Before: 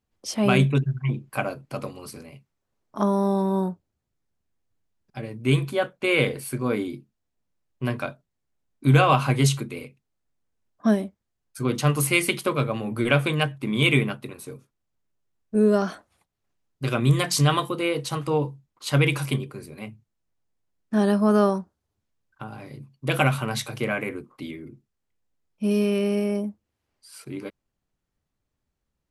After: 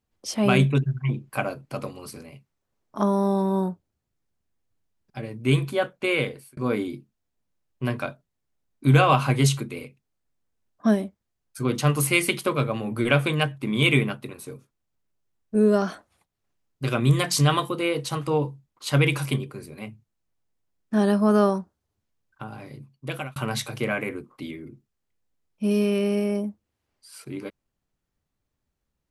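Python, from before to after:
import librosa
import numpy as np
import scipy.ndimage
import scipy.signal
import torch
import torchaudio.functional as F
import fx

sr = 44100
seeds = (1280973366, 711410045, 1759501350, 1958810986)

y = fx.edit(x, sr, fx.fade_out_span(start_s=6.0, length_s=0.57),
    fx.fade_out_span(start_s=22.48, length_s=0.88, curve='qsin'), tone=tone)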